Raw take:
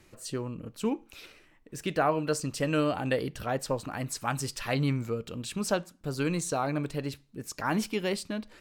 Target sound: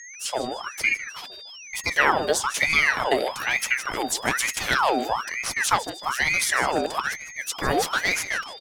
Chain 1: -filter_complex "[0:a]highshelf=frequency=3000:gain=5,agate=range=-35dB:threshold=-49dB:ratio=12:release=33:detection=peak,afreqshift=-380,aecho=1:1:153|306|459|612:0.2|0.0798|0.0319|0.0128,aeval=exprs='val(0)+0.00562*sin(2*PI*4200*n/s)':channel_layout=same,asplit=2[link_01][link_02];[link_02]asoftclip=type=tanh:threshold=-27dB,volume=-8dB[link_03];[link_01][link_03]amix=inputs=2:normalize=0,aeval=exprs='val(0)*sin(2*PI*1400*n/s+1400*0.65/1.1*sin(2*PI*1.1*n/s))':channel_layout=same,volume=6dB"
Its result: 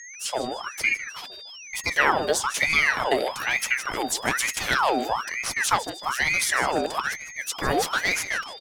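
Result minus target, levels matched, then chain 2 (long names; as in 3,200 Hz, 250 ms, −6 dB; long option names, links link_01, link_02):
soft clipping: distortion +8 dB
-filter_complex "[0:a]highshelf=frequency=3000:gain=5,agate=range=-35dB:threshold=-49dB:ratio=12:release=33:detection=peak,afreqshift=-380,aecho=1:1:153|306|459|612:0.2|0.0798|0.0319|0.0128,aeval=exprs='val(0)+0.00562*sin(2*PI*4200*n/s)':channel_layout=same,asplit=2[link_01][link_02];[link_02]asoftclip=type=tanh:threshold=-19.5dB,volume=-8dB[link_03];[link_01][link_03]amix=inputs=2:normalize=0,aeval=exprs='val(0)*sin(2*PI*1400*n/s+1400*0.65/1.1*sin(2*PI*1.1*n/s))':channel_layout=same,volume=6dB"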